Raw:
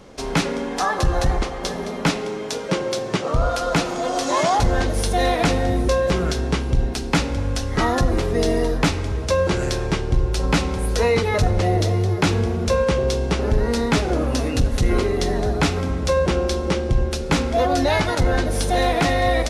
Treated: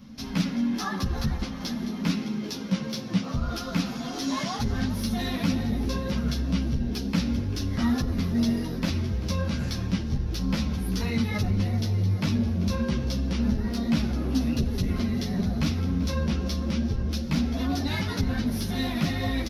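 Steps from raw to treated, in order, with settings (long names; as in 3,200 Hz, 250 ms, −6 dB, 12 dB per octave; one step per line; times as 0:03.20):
drawn EQ curve 250 Hz 0 dB, 370 Hz −30 dB, 2,400 Hz −20 dB, 5,600 Hz −11 dB, 8,100 Hz −28 dB, 12,000 Hz −1 dB
in parallel at −2.5 dB: brickwall limiter −18 dBFS, peak gain reduction 10.5 dB
on the sum: mid-hump overdrive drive 25 dB, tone 2,900 Hz, clips at −5 dBFS
echo with shifted repeats 391 ms, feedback 45%, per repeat +140 Hz, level −16.5 dB
string-ensemble chorus
level −6 dB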